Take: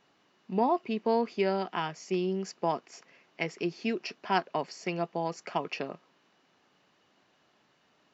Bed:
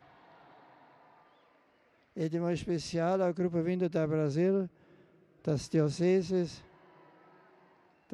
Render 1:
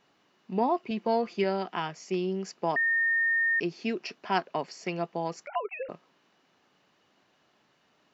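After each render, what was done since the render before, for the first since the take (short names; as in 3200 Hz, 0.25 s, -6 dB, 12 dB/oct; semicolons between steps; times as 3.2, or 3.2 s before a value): 0.9–1.44 comb 5.8 ms, depth 59%; 2.76–3.6 bleep 1830 Hz -22.5 dBFS; 5.47–5.89 sine-wave speech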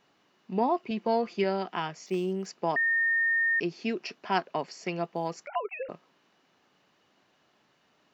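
2.06–2.46 decimation joined by straight lines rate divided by 4×; 5.04–5.45 short-mantissa float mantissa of 6-bit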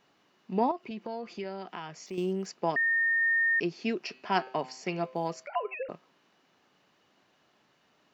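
0.71–2.18 compressor 2.5:1, threshold -38 dBFS; 2.7–3.22 bell 840 Hz -7 dB; 4.06–5.75 de-hum 128.9 Hz, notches 38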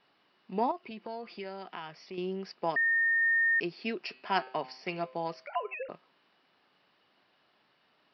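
steep low-pass 5300 Hz 96 dB/oct; low shelf 470 Hz -6.5 dB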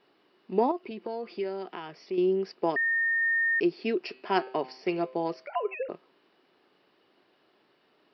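bell 370 Hz +11.5 dB 1 oct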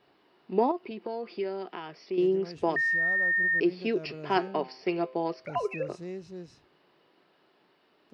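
add bed -12 dB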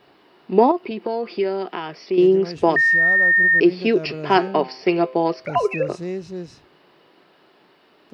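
gain +10.5 dB; limiter -2 dBFS, peak gain reduction 2 dB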